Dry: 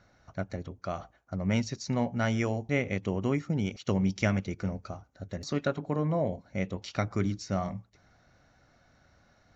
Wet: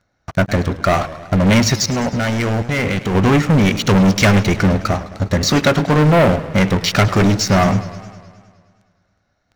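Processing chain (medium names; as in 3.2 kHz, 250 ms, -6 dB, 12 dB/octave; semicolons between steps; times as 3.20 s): waveshaping leveller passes 5; dynamic bell 1.9 kHz, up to +4 dB, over -38 dBFS, Q 0.95; 1.84–3.15 s: level held to a coarse grid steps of 23 dB; modulated delay 104 ms, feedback 68%, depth 148 cents, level -16 dB; trim +5 dB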